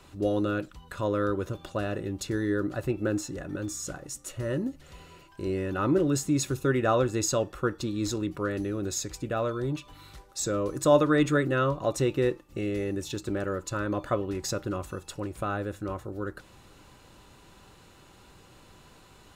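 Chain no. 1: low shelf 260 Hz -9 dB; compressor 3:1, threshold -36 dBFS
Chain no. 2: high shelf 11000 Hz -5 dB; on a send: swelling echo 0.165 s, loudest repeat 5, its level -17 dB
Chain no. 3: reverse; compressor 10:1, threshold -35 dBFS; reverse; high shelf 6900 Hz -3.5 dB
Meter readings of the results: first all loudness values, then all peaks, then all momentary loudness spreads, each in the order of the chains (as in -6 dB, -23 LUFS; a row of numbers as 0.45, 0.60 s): -38.5, -29.0, -40.0 LUFS; -21.5, -8.5, -25.5 dBFS; 19, 15, 16 LU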